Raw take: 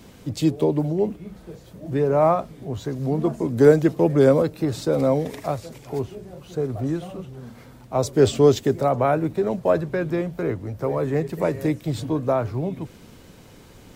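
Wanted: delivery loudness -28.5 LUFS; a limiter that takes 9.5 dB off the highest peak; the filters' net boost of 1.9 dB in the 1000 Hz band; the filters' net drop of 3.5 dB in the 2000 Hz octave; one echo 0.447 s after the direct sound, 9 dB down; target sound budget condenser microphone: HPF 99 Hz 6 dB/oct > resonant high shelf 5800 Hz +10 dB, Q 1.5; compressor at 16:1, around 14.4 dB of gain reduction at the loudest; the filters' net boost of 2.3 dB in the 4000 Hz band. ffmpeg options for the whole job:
-af "equalizer=f=1k:t=o:g=4.5,equalizer=f=2k:t=o:g=-7.5,equalizer=f=4k:t=o:g=6,acompressor=threshold=-23dB:ratio=16,alimiter=limit=-22.5dB:level=0:latency=1,highpass=f=99:p=1,highshelf=f=5.8k:t=q:w=1.5:g=10,aecho=1:1:447:0.355,volume=4dB"

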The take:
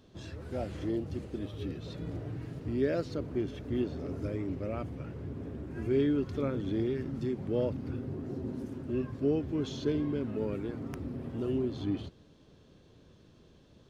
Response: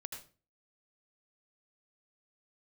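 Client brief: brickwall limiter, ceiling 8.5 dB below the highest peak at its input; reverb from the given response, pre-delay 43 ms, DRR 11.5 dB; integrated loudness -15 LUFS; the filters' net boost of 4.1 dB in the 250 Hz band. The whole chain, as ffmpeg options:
-filter_complex "[0:a]equalizer=f=250:t=o:g=5,alimiter=level_in=0.5dB:limit=-24dB:level=0:latency=1,volume=-0.5dB,asplit=2[a][b];[1:a]atrim=start_sample=2205,adelay=43[c];[b][c]afir=irnorm=-1:irlink=0,volume=-9dB[d];[a][d]amix=inputs=2:normalize=0,volume=19.5dB"

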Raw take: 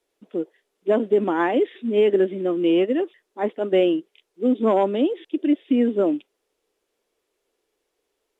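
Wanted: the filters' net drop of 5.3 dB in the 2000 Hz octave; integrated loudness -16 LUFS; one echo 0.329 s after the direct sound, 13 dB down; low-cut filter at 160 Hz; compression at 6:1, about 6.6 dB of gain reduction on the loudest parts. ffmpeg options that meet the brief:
-af "highpass=160,equalizer=f=2k:t=o:g=-7,acompressor=threshold=-21dB:ratio=6,aecho=1:1:329:0.224,volume=11dB"

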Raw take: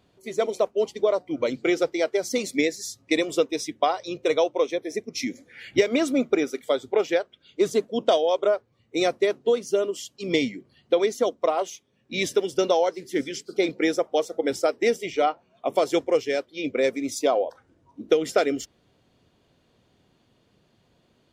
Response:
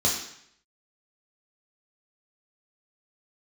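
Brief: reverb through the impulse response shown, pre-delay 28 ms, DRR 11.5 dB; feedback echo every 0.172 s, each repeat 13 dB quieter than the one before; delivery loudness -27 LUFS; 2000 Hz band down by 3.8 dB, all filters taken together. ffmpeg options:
-filter_complex "[0:a]equalizer=f=2k:t=o:g=-4.5,aecho=1:1:172|344|516:0.224|0.0493|0.0108,asplit=2[a][b];[1:a]atrim=start_sample=2205,adelay=28[c];[b][c]afir=irnorm=-1:irlink=0,volume=-23dB[d];[a][d]amix=inputs=2:normalize=0,volume=-2.5dB"

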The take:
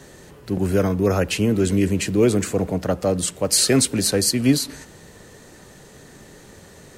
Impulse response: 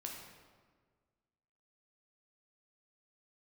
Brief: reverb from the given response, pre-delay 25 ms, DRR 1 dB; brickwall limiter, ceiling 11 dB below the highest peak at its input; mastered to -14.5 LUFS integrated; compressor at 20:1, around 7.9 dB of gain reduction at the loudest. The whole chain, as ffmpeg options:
-filter_complex "[0:a]acompressor=threshold=-19dB:ratio=20,alimiter=limit=-21dB:level=0:latency=1,asplit=2[a][b];[1:a]atrim=start_sample=2205,adelay=25[c];[b][c]afir=irnorm=-1:irlink=0,volume=1dB[d];[a][d]amix=inputs=2:normalize=0,volume=13dB"

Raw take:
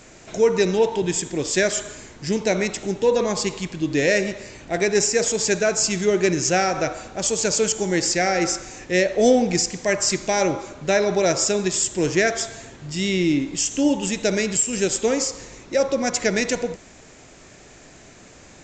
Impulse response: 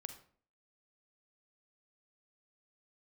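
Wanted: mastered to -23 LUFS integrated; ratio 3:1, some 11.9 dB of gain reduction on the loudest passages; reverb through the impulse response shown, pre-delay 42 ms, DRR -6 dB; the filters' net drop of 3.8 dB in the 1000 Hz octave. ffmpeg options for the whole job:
-filter_complex "[0:a]equalizer=f=1k:t=o:g=-6,acompressor=threshold=-30dB:ratio=3,asplit=2[a][b];[1:a]atrim=start_sample=2205,adelay=42[c];[b][c]afir=irnorm=-1:irlink=0,volume=10dB[d];[a][d]amix=inputs=2:normalize=0,volume=1dB"

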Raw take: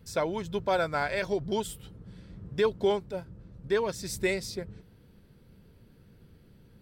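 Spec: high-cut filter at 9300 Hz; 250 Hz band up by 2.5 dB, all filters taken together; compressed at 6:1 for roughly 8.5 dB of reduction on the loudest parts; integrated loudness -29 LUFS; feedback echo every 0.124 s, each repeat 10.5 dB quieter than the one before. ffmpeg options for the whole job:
-af "lowpass=9.3k,equalizer=f=250:t=o:g=4,acompressor=threshold=-29dB:ratio=6,aecho=1:1:124|248|372:0.299|0.0896|0.0269,volume=6dB"

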